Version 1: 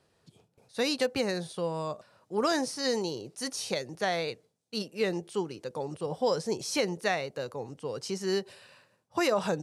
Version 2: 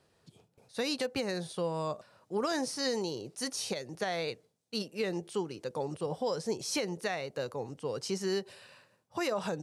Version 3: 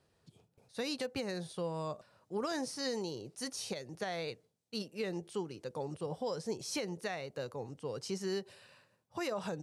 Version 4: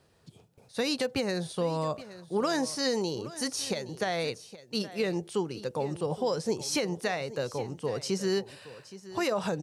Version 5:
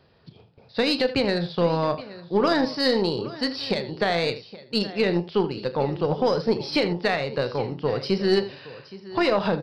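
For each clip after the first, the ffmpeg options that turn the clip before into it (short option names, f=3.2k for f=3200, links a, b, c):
-af "alimiter=limit=-22.5dB:level=0:latency=1:release=231"
-af "lowshelf=f=130:g=6,volume=-5dB"
-af "aecho=1:1:820:0.158,volume=8dB"
-af "aresample=11025,aresample=44100,aecho=1:1:35|80:0.251|0.237,aeval=exprs='0.158*(cos(1*acos(clip(val(0)/0.158,-1,1)))-cos(1*PI/2))+0.01*(cos(4*acos(clip(val(0)/0.158,-1,1)))-cos(4*PI/2))+0.00282*(cos(6*acos(clip(val(0)/0.158,-1,1)))-cos(6*PI/2))+0.00355*(cos(7*acos(clip(val(0)/0.158,-1,1)))-cos(7*PI/2))':c=same,volume=7dB"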